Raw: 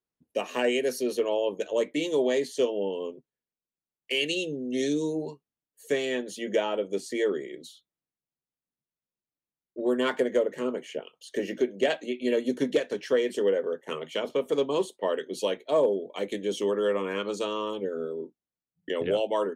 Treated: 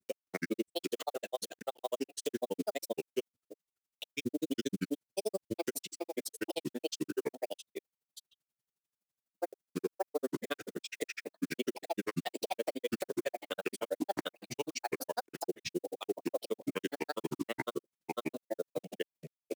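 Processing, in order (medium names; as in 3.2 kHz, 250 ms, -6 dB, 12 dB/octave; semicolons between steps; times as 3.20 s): block-companded coder 5-bit; high-pass 79 Hz; treble shelf 4.8 kHz +8 dB; peak limiter -25 dBFS, peak gain reduction 12 dB; level rider gain up to 3.5 dB; granulator 43 ms, grains 12 per s, spray 592 ms, pitch spread up and down by 7 st; warped record 33 1/3 rpm, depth 250 cents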